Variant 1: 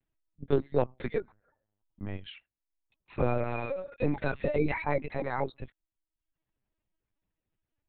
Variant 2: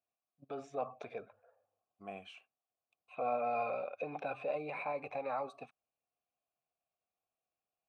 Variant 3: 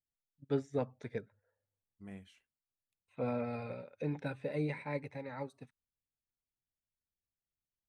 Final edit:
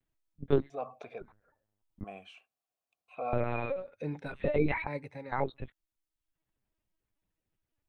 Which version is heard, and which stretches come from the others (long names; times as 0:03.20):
1
0:00.70–0:01.21: punch in from 2
0:02.04–0:03.33: punch in from 2
0:03.86–0:04.36: punch in from 3, crossfade 0.24 s
0:04.87–0:05.32: punch in from 3